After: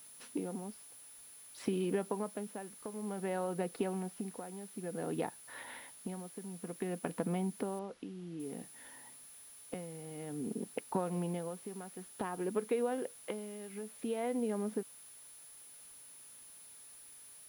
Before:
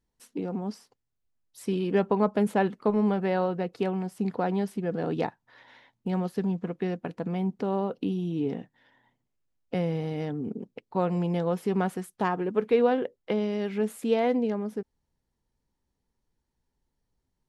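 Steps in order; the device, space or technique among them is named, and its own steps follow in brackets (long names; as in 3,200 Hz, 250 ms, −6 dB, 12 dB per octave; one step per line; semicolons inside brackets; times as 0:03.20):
medium wave at night (band-pass filter 160–3,800 Hz; downward compressor 6 to 1, threshold −39 dBFS, peak gain reduction 19.5 dB; amplitude tremolo 0.55 Hz, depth 74%; steady tone 10,000 Hz −60 dBFS; white noise bed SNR 21 dB)
0:07.79–0:08.40: low-pass filter 4,300 Hz 12 dB per octave
level +7 dB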